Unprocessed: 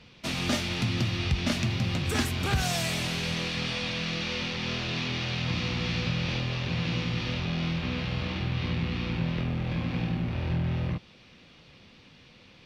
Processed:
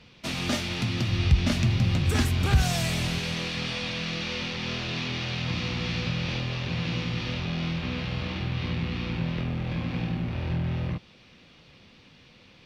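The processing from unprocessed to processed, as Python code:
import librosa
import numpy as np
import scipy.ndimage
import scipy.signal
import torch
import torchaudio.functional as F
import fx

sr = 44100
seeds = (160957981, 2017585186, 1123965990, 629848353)

y = fx.low_shelf(x, sr, hz=110.0, db=12.0, at=(1.09, 3.19))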